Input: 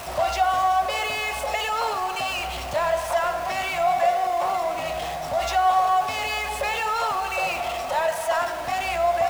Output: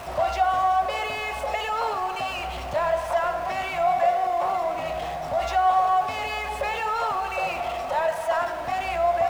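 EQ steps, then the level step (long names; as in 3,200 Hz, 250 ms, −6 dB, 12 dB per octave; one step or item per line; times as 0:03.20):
high-shelf EQ 3,200 Hz −10 dB
0.0 dB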